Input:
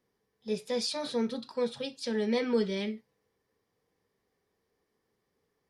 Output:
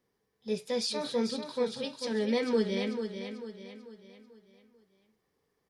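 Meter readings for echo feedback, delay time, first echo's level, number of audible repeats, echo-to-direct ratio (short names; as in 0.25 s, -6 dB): 43%, 0.442 s, -8.0 dB, 4, -7.0 dB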